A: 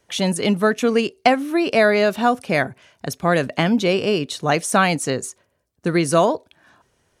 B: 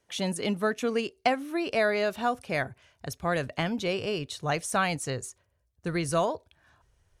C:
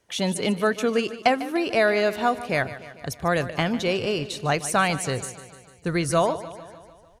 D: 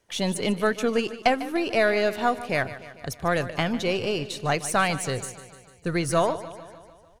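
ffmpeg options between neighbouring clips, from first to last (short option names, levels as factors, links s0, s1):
-af "asubboost=boost=11:cutoff=71,volume=0.355"
-af "aecho=1:1:149|298|447|596|745|894:0.178|0.107|0.064|0.0384|0.023|0.0138,volume=1.78"
-af "aeval=exprs='if(lt(val(0),0),0.708*val(0),val(0))':c=same"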